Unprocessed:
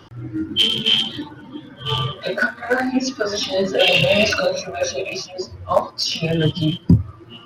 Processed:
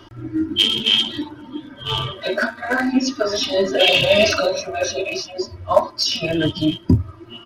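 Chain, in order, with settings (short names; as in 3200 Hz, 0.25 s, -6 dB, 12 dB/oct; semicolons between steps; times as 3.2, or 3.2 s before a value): comb 3.1 ms, depth 59%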